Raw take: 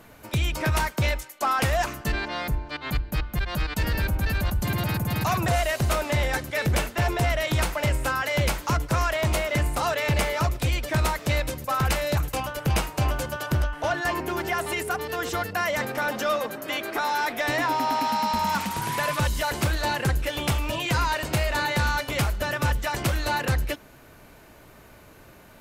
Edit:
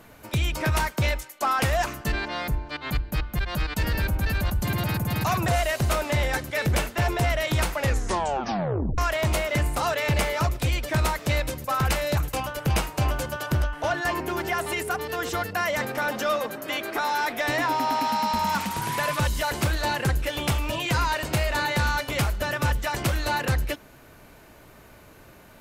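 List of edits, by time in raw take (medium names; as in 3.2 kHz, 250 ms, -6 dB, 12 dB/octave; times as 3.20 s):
7.76 s: tape stop 1.22 s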